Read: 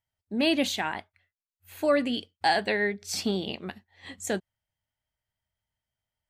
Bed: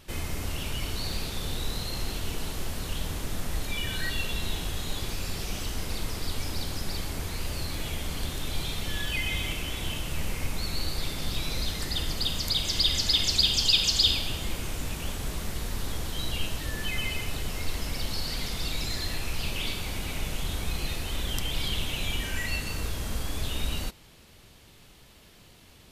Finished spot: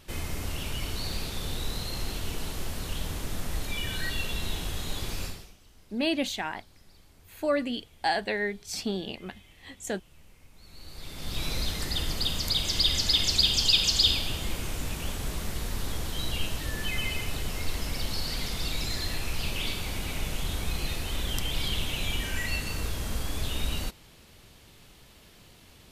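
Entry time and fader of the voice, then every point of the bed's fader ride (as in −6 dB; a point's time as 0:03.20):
5.60 s, −3.0 dB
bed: 0:05.25 −1 dB
0:05.57 −24.5 dB
0:10.51 −24.5 dB
0:11.43 0 dB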